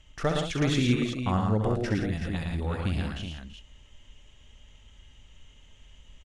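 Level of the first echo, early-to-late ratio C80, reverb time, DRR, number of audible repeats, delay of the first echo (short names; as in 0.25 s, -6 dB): -7.5 dB, none, none, none, 5, 65 ms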